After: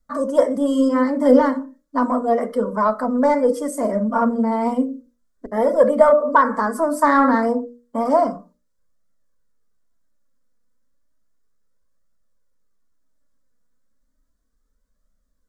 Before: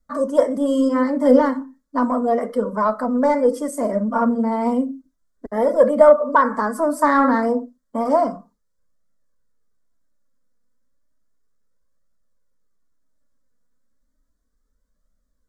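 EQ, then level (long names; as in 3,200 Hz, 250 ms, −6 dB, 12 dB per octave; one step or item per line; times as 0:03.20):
mains-hum notches 60/120/180/240/300/360/420/480/540/600 Hz
+1.0 dB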